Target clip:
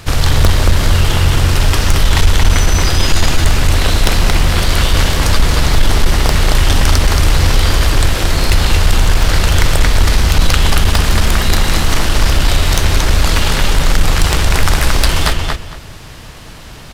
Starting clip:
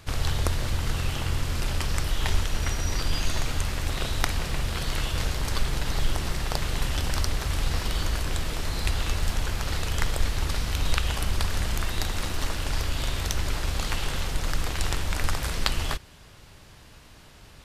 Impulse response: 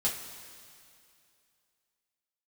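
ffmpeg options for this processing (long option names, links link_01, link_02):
-filter_complex "[0:a]asetrate=45938,aresample=44100,asplit=2[link_01][link_02];[link_02]adelay=227,lowpass=frequency=4900:poles=1,volume=-3dB,asplit=2[link_03][link_04];[link_04]adelay=227,lowpass=frequency=4900:poles=1,volume=0.22,asplit=2[link_05][link_06];[link_06]adelay=227,lowpass=frequency=4900:poles=1,volume=0.22[link_07];[link_01][link_03][link_05][link_07]amix=inputs=4:normalize=0,aeval=exprs='0.841*sin(PI/2*3.55*val(0)/0.841)':channel_layout=same"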